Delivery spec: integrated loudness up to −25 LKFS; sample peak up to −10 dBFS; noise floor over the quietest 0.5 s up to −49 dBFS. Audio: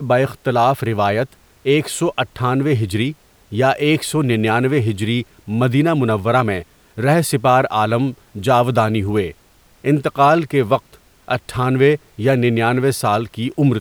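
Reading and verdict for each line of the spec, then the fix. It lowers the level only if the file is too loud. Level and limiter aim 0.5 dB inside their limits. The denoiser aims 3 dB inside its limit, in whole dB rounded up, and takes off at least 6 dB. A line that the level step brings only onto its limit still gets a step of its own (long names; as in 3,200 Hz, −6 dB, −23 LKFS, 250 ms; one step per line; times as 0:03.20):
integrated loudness −17.5 LKFS: out of spec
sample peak −2.5 dBFS: out of spec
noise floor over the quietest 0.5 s −52 dBFS: in spec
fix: level −8 dB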